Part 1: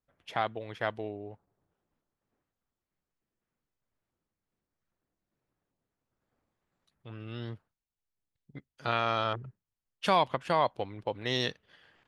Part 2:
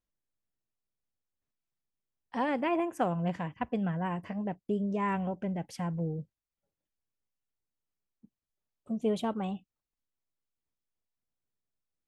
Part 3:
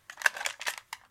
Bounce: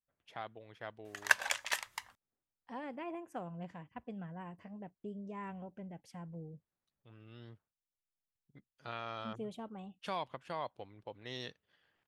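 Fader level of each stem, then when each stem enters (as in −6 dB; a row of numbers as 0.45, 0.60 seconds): −13.5, −13.5, −2.0 decibels; 0.00, 0.35, 1.05 seconds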